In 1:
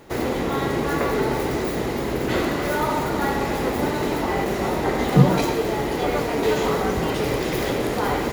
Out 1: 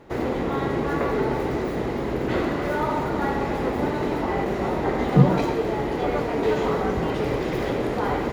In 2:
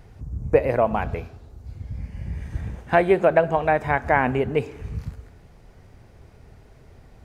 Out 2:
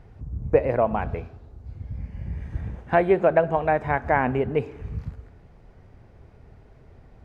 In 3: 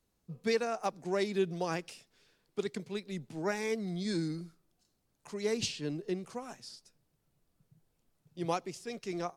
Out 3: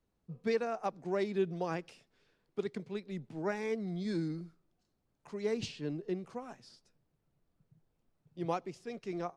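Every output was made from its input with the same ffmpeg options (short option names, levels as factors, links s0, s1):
-af "lowpass=f=2000:p=1,volume=0.891"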